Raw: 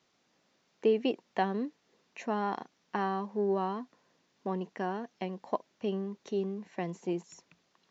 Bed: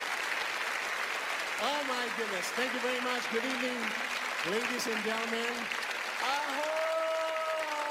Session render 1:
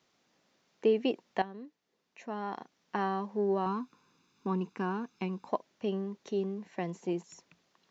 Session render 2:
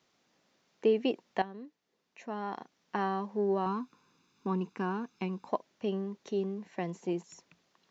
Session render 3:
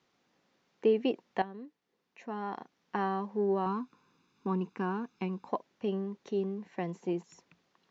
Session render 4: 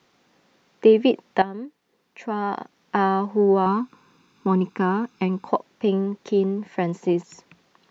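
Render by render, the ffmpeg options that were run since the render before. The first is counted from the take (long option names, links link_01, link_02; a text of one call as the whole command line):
ffmpeg -i in.wav -filter_complex "[0:a]asettb=1/sr,asplit=3[link_01][link_02][link_03];[link_01]atrim=end=3.664[link_04];[link_02]atrim=start=3.66:end=5.49,asetpts=PTS-STARTPTS,afade=type=in:duration=0.004:curve=qsin,afade=type=out:start_time=1.826:duration=0.004:curve=qsin,aecho=1:1:0.8:0.8,atrim=end_sample=80703[link_05];[link_03]atrim=start=5.486[link_06];[link_04][link_05]acrossfade=duration=0.004:curve1=hsin:curve2=qsin[link_07];[link_07][link_06]acrossfade=duration=0.004:curve1=qsin:curve2=hsin,asplit=2[link_08][link_09];[link_08]atrim=end=1.42,asetpts=PTS-STARTPTS,afade=type=out:start_time=1.416:duration=0.004:curve=hsin:silence=0.237137[link_10];[link_09]atrim=start=1.42,asetpts=PTS-STARTPTS,afade=type=in:duration=1.57:curve=qua:silence=0.237137[link_11];[link_10][link_11]concat=n=2:v=0:a=1" out.wav
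ffmpeg -i in.wav -af anull out.wav
ffmpeg -i in.wav -af "aemphasis=mode=reproduction:type=cd,bandreject=frequency=630:width=13" out.wav
ffmpeg -i in.wav -af "volume=11.5dB" out.wav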